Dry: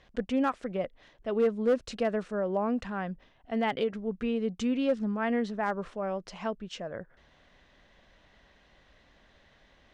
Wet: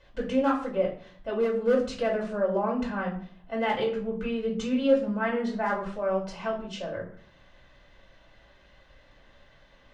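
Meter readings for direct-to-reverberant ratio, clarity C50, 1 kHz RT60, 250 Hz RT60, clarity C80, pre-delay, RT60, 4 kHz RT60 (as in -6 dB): -5.5 dB, 8.0 dB, 0.50 s, 0.70 s, 12.0 dB, 3 ms, 0.50 s, 0.35 s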